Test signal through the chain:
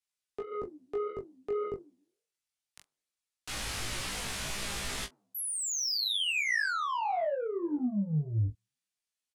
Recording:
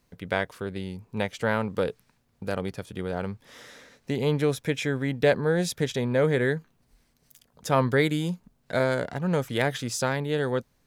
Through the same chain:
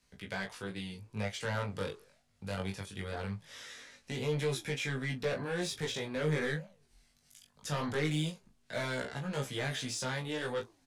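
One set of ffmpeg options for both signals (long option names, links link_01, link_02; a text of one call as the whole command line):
ffmpeg -i in.wav -filter_complex "[0:a]lowpass=frequency=11000:width=0.5412,lowpass=frequency=11000:width=1.3066,acrossover=split=3600[link_01][link_02];[link_02]acompressor=threshold=-37dB:ratio=4:attack=1:release=60[link_03];[link_01][link_03]amix=inputs=2:normalize=0,tiltshelf=frequency=970:gain=-3.5,acrossover=split=160|1600[link_04][link_05][link_06];[link_05]flanger=delay=6.9:depth=6.9:regen=-89:speed=1.8:shape=triangular[link_07];[link_06]alimiter=limit=-24dB:level=0:latency=1:release=26[link_08];[link_04][link_07][link_08]amix=inputs=3:normalize=0,asoftclip=type=tanh:threshold=-26dB,flanger=delay=15:depth=6.5:speed=0.21,aecho=1:1:20|46:0.596|0.133" out.wav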